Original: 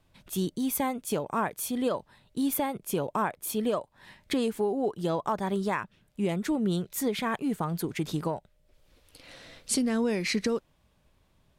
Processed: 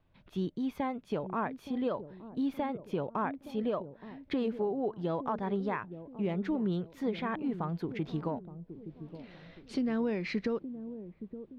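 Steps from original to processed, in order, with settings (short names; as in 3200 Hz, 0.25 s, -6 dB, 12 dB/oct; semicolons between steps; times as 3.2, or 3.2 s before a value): air absorption 290 m; on a send: dark delay 0.87 s, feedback 39%, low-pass 460 Hz, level -10 dB; on the sum: gain -3.5 dB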